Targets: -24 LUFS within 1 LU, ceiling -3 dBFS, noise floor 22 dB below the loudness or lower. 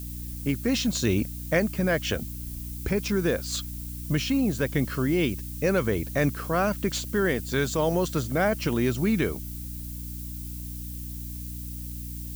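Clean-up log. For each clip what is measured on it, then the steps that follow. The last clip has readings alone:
hum 60 Hz; harmonics up to 300 Hz; hum level -35 dBFS; noise floor -36 dBFS; noise floor target -50 dBFS; loudness -27.5 LUFS; peak -10.5 dBFS; loudness target -24.0 LUFS
-> de-hum 60 Hz, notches 5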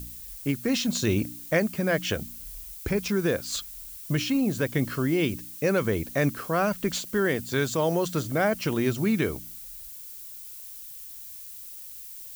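hum none; noise floor -42 dBFS; noise floor target -49 dBFS
-> noise print and reduce 7 dB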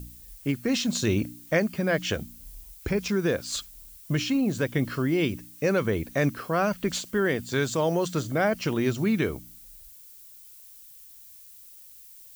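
noise floor -49 dBFS; loudness -27.0 LUFS; peak -10.5 dBFS; loudness target -24.0 LUFS
-> gain +3 dB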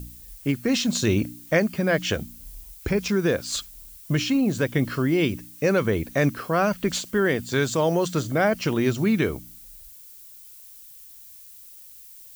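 loudness -24.0 LUFS; peak -7.5 dBFS; noise floor -46 dBFS

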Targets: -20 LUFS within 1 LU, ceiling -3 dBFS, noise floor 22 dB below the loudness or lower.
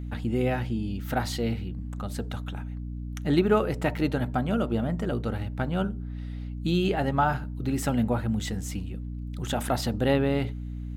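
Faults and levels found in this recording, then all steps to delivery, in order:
hum 60 Hz; harmonics up to 300 Hz; hum level -32 dBFS; loudness -28.5 LUFS; peak -10.5 dBFS; loudness target -20.0 LUFS
-> de-hum 60 Hz, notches 5; gain +8.5 dB; limiter -3 dBFS

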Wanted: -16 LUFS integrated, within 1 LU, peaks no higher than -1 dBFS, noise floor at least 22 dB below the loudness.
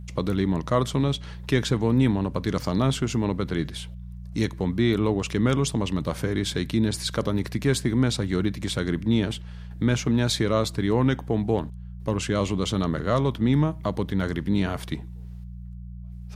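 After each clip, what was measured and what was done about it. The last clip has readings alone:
hum 60 Hz; harmonics up to 180 Hz; hum level -36 dBFS; loudness -25.0 LUFS; peak -8.0 dBFS; loudness target -16.0 LUFS
-> de-hum 60 Hz, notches 3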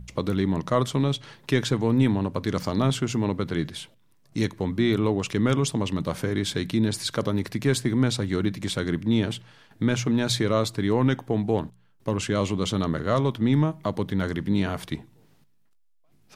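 hum none; loudness -25.5 LUFS; peak -8.5 dBFS; loudness target -16.0 LUFS
-> gain +9.5 dB; limiter -1 dBFS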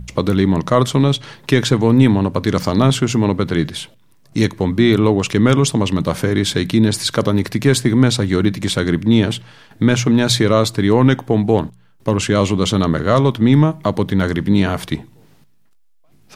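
loudness -16.0 LUFS; peak -1.0 dBFS; noise floor -50 dBFS

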